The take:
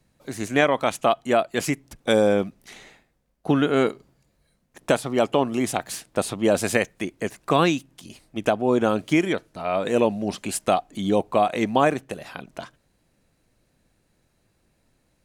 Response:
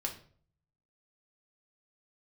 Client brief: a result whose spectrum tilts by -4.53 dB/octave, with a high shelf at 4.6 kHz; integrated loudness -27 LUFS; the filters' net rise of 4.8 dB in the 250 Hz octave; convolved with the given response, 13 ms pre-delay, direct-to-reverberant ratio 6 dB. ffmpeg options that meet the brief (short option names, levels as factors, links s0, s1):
-filter_complex "[0:a]equalizer=f=250:t=o:g=6,highshelf=f=4600:g=9,asplit=2[s0][s1];[1:a]atrim=start_sample=2205,adelay=13[s2];[s1][s2]afir=irnorm=-1:irlink=0,volume=0.422[s3];[s0][s3]amix=inputs=2:normalize=0,volume=0.422"